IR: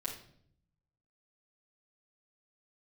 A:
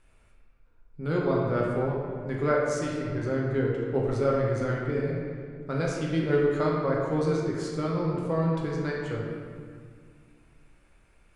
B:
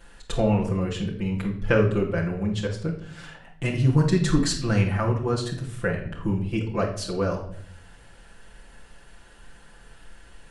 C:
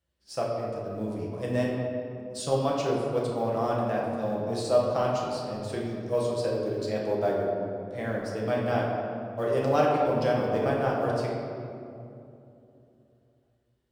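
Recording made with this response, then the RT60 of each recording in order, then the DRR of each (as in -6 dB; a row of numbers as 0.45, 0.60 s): B; 2.0, 0.60, 2.7 s; -3.5, -5.0, -4.0 dB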